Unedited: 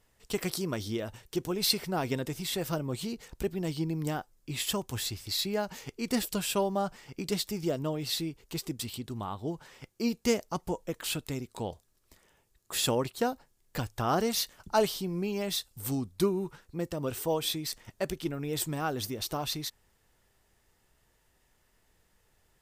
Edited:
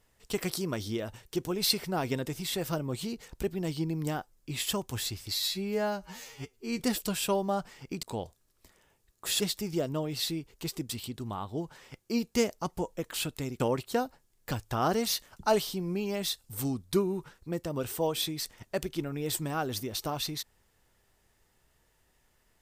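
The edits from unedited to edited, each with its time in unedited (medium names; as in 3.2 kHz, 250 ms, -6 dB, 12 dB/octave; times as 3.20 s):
5.34–6.07 s: stretch 2×
11.50–12.87 s: move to 7.30 s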